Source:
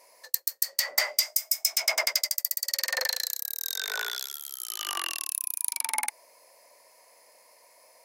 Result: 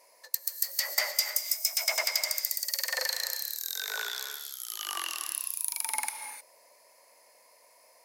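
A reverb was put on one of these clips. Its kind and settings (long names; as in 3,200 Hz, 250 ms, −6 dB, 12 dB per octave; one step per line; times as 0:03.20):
reverb whose tail is shaped and stops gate 330 ms rising, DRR 7 dB
level −3 dB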